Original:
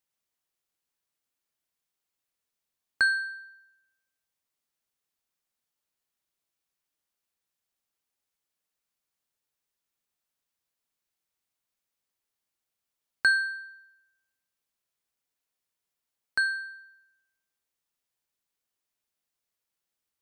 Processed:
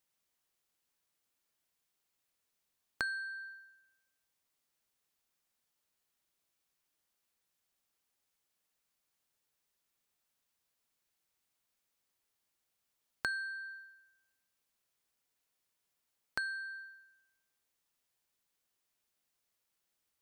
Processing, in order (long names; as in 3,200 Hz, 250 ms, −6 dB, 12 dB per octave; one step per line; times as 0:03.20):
downward compressor 4 to 1, threshold −40 dBFS, peak gain reduction 17.5 dB
level +2.5 dB